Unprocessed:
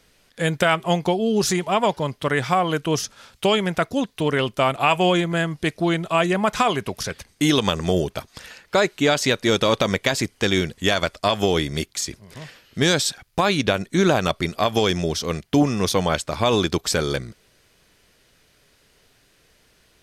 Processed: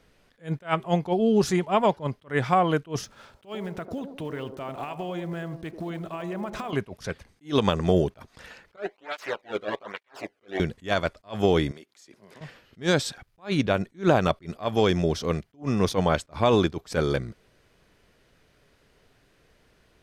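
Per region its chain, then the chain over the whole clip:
0:03.04–0:06.73: one scale factor per block 5 bits + downward compressor 16 to 1, threshold −28 dBFS + delay with a band-pass on its return 96 ms, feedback 50%, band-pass 440 Hz, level −7 dB
0:08.76–0:10.60: lower of the sound and its delayed copy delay 9.9 ms + bass and treble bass −11 dB, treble −12 dB + through-zero flanger with one copy inverted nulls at 1.2 Hz, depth 1.2 ms
0:11.71–0:12.41: high-pass filter 280 Hz + downward compressor 5 to 1, threshold −42 dBFS
whole clip: high-shelf EQ 2,800 Hz −12 dB; level that may rise only so fast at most 280 dB per second

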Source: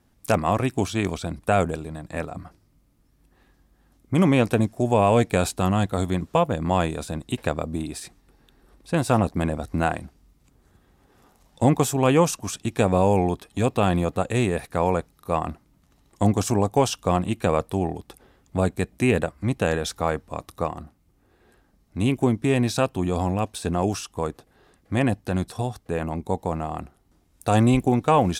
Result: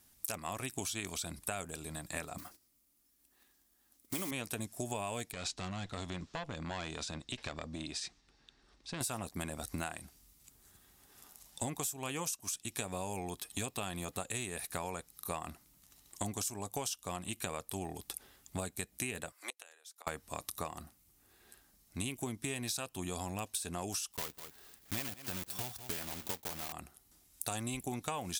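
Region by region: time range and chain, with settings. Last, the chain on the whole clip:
0:02.38–0:04.32: one scale factor per block 5 bits + noise gate −57 dBFS, range −7 dB + low shelf with overshoot 190 Hz −7 dB, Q 1.5
0:05.32–0:09.01: tube saturation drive 14 dB, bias 0.55 + downward compressor 5 to 1, threshold −27 dBFS + low-pass filter 5,800 Hz 24 dB per octave
0:19.32–0:20.07: Bessel high-pass filter 620 Hz, order 8 + gate with flip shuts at −23 dBFS, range −29 dB
0:24.12–0:26.73: one scale factor per block 3 bits + parametric band 10,000 Hz −6 dB 1.8 octaves + single-tap delay 196 ms −17.5 dB
whole clip: first-order pre-emphasis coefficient 0.9; notch filter 500 Hz, Q 12; downward compressor 12 to 1, threshold −44 dBFS; level +9.5 dB

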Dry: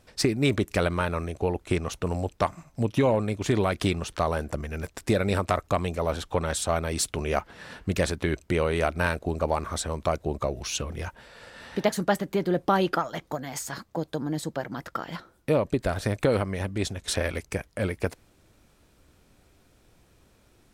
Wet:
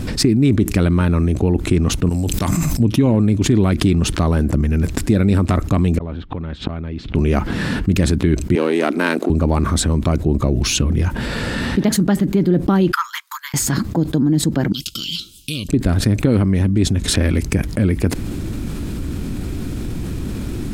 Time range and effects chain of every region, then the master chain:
0:02.09–0:02.80: first-order pre-emphasis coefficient 0.8 + level that may fall only so fast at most 21 dB per second
0:05.98–0:07.15: low-pass filter 3,500 Hz 24 dB per octave + gate with flip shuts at −28 dBFS, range −36 dB
0:08.55–0:09.30: gain on one half-wave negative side −7 dB + high-pass filter 270 Hz 24 dB per octave
0:12.92–0:13.54: Butterworth high-pass 960 Hz 96 dB per octave + high-shelf EQ 9,000 Hz +9 dB + expander for the loud parts 2.5 to 1, over −44 dBFS
0:14.72–0:15.69: elliptic high-pass filter 2,900 Hz + spectral tilt −2 dB per octave
whole clip: low shelf with overshoot 400 Hz +11 dB, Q 1.5; notch filter 5,800 Hz, Q 24; envelope flattener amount 70%; level −4.5 dB

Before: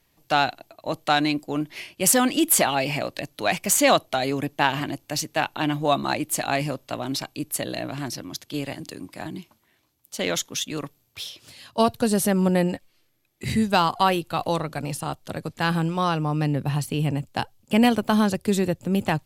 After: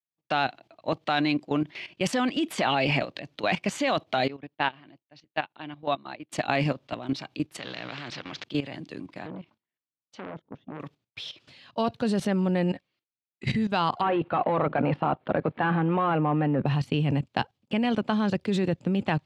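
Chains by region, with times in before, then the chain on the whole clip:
0:04.28–0:06.32: low-pass filter 5,100 Hz 24 dB per octave + low-shelf EQ 160 Hz −5.5 dB + expander for the loud parts 2.5 to 1, over −30 dBFS
0:07.59–0:08.44: mu-law and A-law mismatch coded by mu + loudspeaker in its box 130–4,900 Hz, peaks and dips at 220 Hz −7 dB, 340 Hz −8 dB, 660 Hz −5 dB, 990 Hz −5 dB + every bin compressed towards the loudest bin 2 to 1
0:09.25–0:10.80: treble cut that deepens with the level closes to 510 Hz, closed at −26.5 dBFS + saturating transformer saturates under 1,300 Hz
0:14.01–0:16.66: mid-hump overdrive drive 24 dB, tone 1,100 Hz, clips at −5.5 dBFS + high-frequency loss of the air 440 metres
whole clip: Chebyshev band-pass filter 130–3,300 Hz, order 2; downward expander −48 dBFS; output level in coarse steps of 14 dB; level +4 dB

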